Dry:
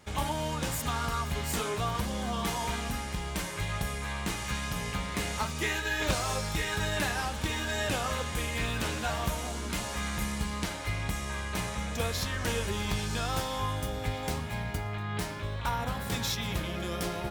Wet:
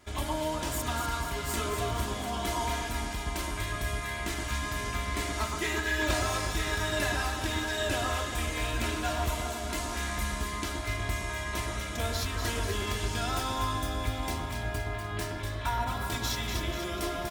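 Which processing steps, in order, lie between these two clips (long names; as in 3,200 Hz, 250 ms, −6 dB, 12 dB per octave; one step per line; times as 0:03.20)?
comb filter 3 ms, depth 67%
delay that swaps between a low-pass and a high-pass 122 ms, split 1,600 Hz, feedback 76%, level −4 dB
level −2.5 dB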